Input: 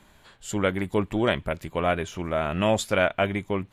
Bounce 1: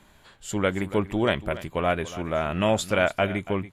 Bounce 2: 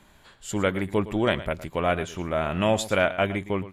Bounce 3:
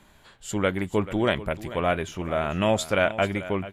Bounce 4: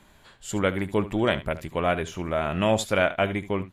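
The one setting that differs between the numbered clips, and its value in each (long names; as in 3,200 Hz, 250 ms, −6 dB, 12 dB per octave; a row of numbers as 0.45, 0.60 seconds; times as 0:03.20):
single-tap delay, delay time: 284, 113, 438, 73 milliseconds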